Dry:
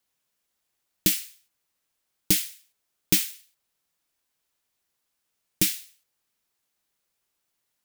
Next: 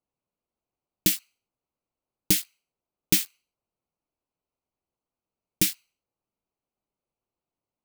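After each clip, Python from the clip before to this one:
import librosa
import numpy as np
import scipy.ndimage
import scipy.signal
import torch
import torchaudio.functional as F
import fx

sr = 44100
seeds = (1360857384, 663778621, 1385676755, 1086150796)

y = fx.wiener(x, sr, points=25)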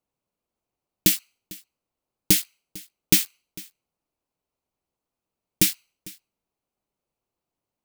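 y = x + 10.0 ** (-21.5 / 20.0) * np.pad(x, (int(450 * sr / 1000.0), 0))[:len(x)]
y = F.gain(torch.from_numpy(y), 3.5).numpy()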